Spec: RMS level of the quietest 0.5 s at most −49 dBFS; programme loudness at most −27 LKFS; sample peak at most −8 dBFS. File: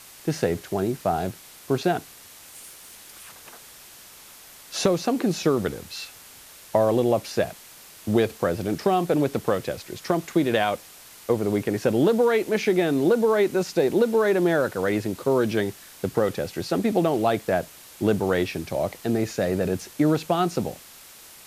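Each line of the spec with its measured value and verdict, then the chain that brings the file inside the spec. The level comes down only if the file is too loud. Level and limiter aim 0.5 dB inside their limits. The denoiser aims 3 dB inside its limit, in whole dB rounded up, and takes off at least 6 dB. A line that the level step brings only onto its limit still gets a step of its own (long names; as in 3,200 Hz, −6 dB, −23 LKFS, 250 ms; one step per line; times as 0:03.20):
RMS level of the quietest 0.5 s −47 dBFS: out of spec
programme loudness −24.0 LKFS: out of spec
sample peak −7.0 dBFS: out of spec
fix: level −3.5 dB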